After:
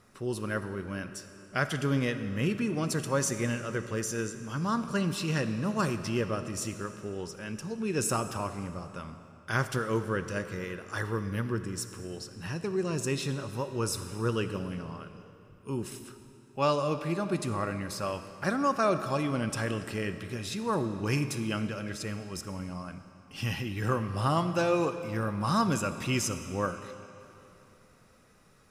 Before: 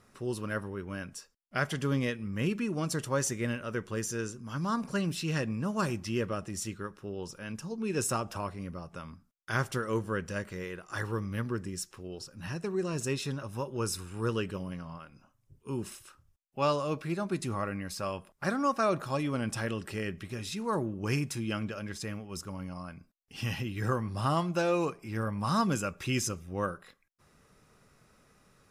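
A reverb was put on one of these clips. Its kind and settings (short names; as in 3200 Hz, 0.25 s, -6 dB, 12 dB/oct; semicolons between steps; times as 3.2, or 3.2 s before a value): digital reverb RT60 3 s, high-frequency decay 0.9×, pre-delay 15 ms, DRR 10 dB; gain +1.5 dB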